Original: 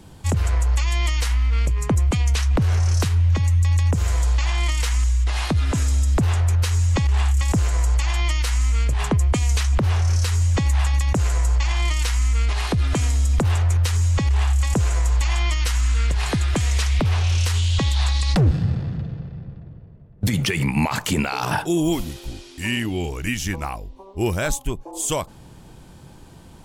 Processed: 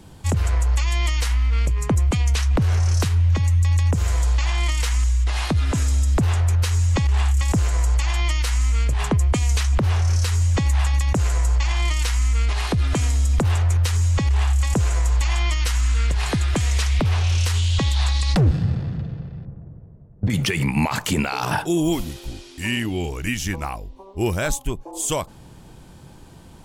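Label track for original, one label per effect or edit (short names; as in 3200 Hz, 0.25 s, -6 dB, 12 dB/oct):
19.450000	20.300000	LPF 1200 Hz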